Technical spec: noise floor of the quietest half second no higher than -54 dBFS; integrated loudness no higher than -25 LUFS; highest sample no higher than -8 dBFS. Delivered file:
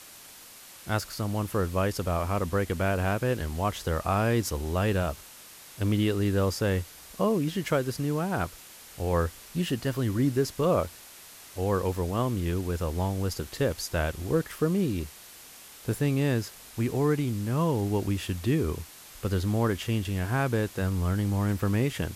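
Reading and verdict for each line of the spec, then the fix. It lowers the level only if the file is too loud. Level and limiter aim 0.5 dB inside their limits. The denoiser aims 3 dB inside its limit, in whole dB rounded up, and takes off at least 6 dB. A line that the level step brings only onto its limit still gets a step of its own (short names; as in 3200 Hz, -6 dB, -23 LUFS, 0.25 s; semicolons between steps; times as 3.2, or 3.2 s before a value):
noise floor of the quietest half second -49 dBFS: fail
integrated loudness -28.5 LUFS: OK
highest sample -14.0 dBFS: OK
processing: denoiser 8 dB, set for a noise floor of -49 dBFS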